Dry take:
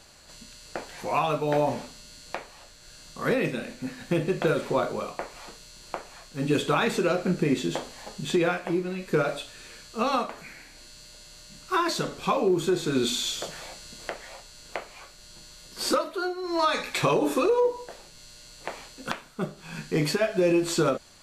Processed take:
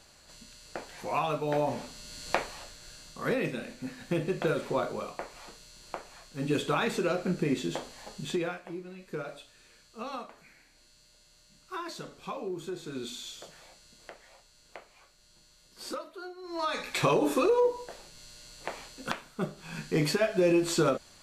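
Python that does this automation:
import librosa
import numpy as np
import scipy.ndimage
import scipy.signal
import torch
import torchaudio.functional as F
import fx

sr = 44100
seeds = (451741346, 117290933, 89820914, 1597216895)

y = fx.gain(x, sr, db=fx.line((1.68, -4.5), (2.4, 7.0), (3.22, -4.5), (8.24, -4.5), (8.65, -13.0), (16.32, -13.0), (17.02, -2.0)))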